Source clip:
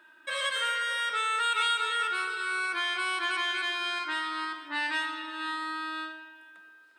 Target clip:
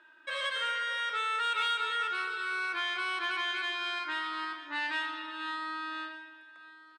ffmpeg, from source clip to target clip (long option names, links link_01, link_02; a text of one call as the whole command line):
ffmpeg -i in.wav -filter_complex "[0:a]highpass=240,lowpass=5400,aecho=1:1:1187:0.0891,asplit=2[link_01][link_02];[link_02]asoftclip=type=tanh:threshold=-29dB,volume=-9.5dB[link_03];[link_01][link_03]amix=inputs=2:normalize=0,volume=-4.5dB" out.wav